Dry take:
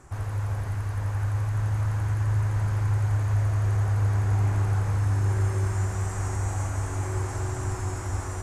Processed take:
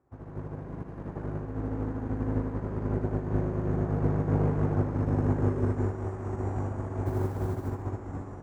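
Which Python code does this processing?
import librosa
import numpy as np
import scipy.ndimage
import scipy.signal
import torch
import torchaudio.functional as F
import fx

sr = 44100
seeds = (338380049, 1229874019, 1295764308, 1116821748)

p1 = fx.octave_divider(x, sr, octaves=1, level_db=0.0)
p2 = fx.low_shelf(p1, sr, hz=390.0, db=6.5)
p3 = 10.0 ** (-16.5 / 20.0) * np.tanh(p2 / 10.0 ** (-16.5 / 20.0))
p4 = p2 + F.gain(torch.from_numpy(p3), -10.5).numpy()
p5 = fx.bandpass_q(p4, sr, hz=480.0, q=0.73)
p6 = fx.room_flutter(p5, sr, wall_m=10.6, rt60_s=0.83, at=(0.58, 1.26))
p7 = fx.dmg_noise_colour(p6, sr, seeds[0], colour='white', level_db=-57.0, at=(7.05, 7.67), fade=0.02)
p8 = p7 + fx.echo_feedback(p7, sr, ms=72, feedback_pct=50, wet_db=-5.5, dry=0)
p9 = fx.upward_expand(p8, sr, threshold_db=-37.0, expansion=2.5)
y = F.gain(torch.from_numpy(p9), 2.0).numpy()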